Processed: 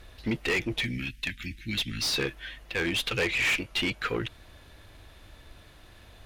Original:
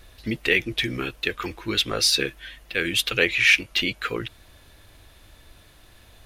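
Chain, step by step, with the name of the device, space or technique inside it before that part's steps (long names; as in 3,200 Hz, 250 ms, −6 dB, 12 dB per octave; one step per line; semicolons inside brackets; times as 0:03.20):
0:00.79–0:02.05: elliptic band-stop filter 250–1,900 Hz, stop band 40 dB
tube preamp driven hard (tube saturation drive 23 dB, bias 0.3; high-shelf EQ 6,000 Hz −9 dB)
level +1.5 dB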